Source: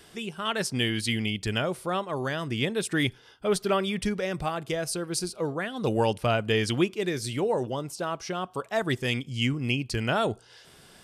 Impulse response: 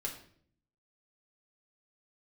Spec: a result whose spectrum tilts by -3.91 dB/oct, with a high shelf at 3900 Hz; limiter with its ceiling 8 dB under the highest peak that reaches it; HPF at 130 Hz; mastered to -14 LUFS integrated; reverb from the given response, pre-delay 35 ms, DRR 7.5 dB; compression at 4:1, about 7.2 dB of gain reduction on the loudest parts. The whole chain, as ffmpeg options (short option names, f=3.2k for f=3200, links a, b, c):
-filter_complex "[0:a]highpass=130,highshelf=f=3.9k:g=5,acompressor=threshold=-28dB:ratio=4,alimiter=limit=-23dB:level=0:latency=1,asplit=2[a][b];[1:a]atrim=start_sample=2205,adelay=35[c];[b][c]afir=irnorm=-1:irlink=0,volume=-8dB[d];[a][d]amix=inputs=2:normalize=0,volume=19dB"